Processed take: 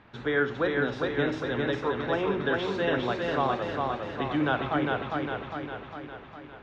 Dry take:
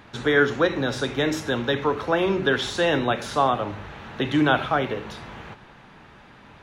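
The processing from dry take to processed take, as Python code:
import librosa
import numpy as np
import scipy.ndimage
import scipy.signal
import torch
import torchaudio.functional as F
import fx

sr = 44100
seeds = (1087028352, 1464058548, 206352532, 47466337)

y = scipy.signal.sosfilt(scipy.signal.butter(2, 3200.0, 'lowpass', fs=sr, output='sos'), x)
y = fx.echo_feedback(y, sr, ms=405, feedback_pct=57, wet_db=-3.0)
y = y * librosa.db_to_amplitude(-7.0)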